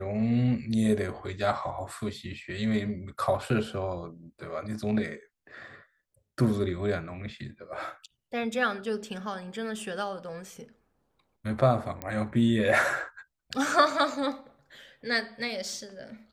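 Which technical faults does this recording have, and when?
12.02 s: pop -18 dBFS

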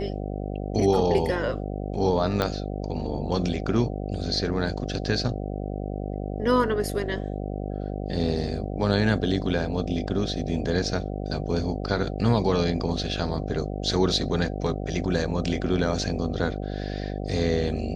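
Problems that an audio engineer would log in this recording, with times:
buzz 50 Hz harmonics 15 -31 dBFS
2.42 s: pop -10 dBFS

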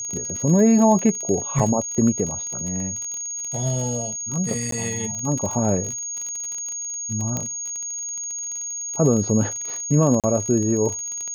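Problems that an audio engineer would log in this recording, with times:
crackle 32 per s -26 dBFS
whine 6.6 kHz -27 dBFS
1.59–1.60 s: dropout 5.1 ms
4.71–4.72 s: dropout 13 ms
7.37 s: pop -11 dBFS
10.20–10.24 s: dropout 37 ms

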